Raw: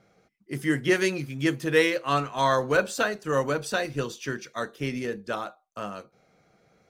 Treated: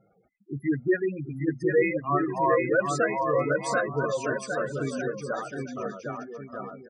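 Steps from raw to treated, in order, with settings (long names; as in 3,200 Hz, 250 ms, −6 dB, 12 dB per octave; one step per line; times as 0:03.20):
gate on every frequency bin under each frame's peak −10 dB strong
reverb reduction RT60 0.51 s
bouncing-ball delay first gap 760 ms, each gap 0.65×, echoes 5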